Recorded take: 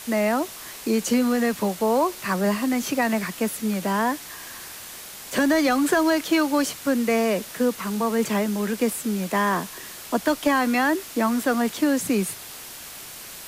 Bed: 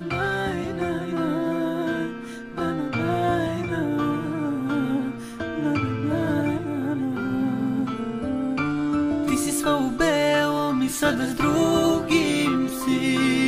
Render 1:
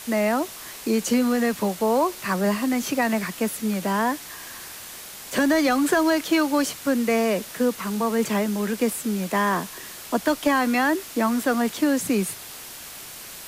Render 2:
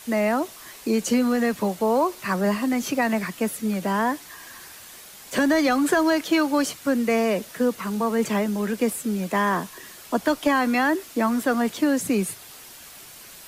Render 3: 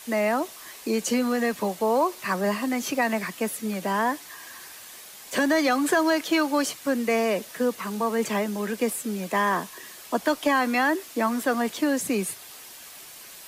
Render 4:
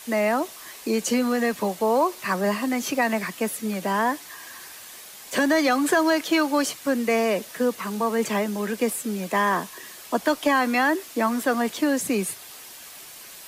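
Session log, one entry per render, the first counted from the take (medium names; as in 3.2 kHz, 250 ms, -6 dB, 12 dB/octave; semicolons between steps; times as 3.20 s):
no audible change
noise reduction 6 dB, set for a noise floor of -40 dBFS
bass shelf 200 Hz -10 dB; band-stop 1.4 kHz, Q 20
trim +1.5 dB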